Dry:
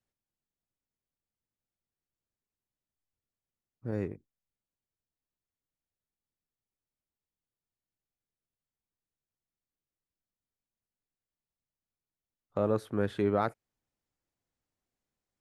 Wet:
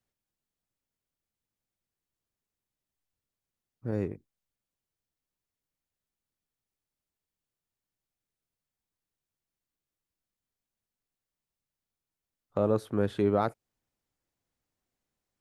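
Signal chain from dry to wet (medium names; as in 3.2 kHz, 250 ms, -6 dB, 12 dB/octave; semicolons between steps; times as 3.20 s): dynamic bell 1.8 kHz, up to -5 dB, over -48 dBFS, Q 1.4; trim +2.5 dB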